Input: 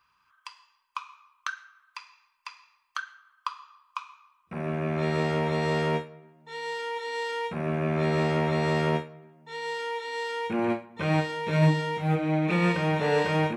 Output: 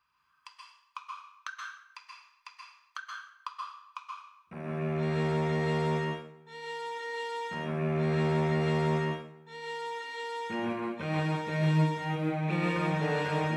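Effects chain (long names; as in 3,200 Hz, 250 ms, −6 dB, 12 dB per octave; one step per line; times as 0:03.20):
dense smooth reverb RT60 0.58 s, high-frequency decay 0.95×, pre-delay 115 ms, DRR −1 dB
level −7.5 dB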